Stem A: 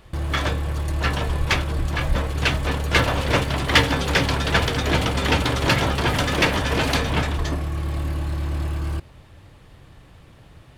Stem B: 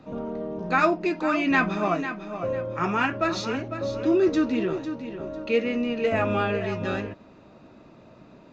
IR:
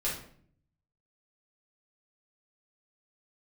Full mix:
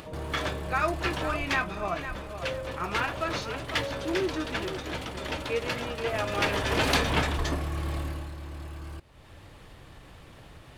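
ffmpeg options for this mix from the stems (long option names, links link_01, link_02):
-filter_complex "[0:a]lowshelf=frequency=89:gain=-11.5,volume=5.5dB,afade=type=out:start_time=1.28:duration=0.39:silence=0.446684,afade=type=in:start_time=6.27:duration=0.67:silence=0.266073,afade=type=out:start_time=7.92:duration=0.42:silence=0.334965[link_01];[1:a]equalizer=frequency=240:width=2.1:gain=-11.5,volume=-5.5dB[link_02];[link_01][link_02]amix=inputs=2:normalize=0,asubboost=boost=2:cutoff=72,acompressor=mode=upward:threshold=-36dB:ratio=2.5"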